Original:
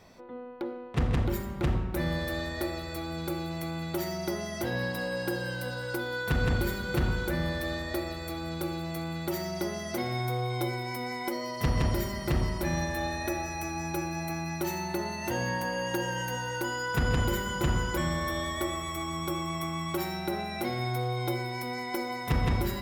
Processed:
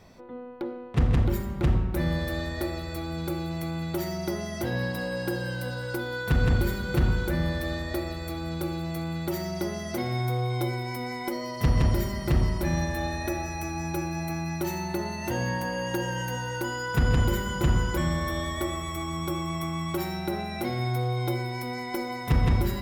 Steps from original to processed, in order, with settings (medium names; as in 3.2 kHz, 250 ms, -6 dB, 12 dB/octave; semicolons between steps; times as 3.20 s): bass shelf 240 Hz +6 dB